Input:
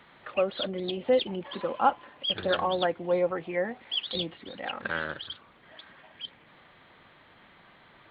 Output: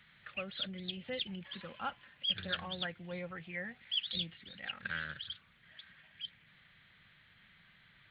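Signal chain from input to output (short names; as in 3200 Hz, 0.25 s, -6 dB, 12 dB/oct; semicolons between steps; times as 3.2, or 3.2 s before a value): band shelf 540 Hz -15.5 dB 2.5 oct; gain -4 dB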